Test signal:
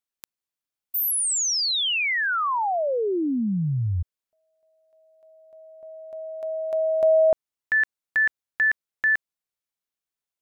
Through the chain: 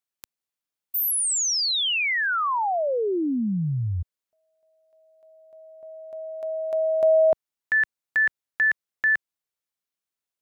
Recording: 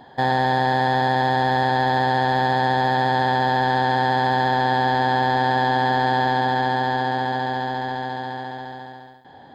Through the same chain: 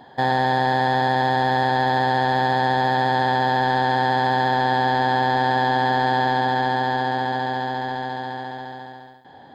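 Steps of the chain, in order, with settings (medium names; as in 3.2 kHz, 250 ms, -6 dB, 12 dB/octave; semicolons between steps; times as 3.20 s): bass shelf 60 Hz -6.5 dB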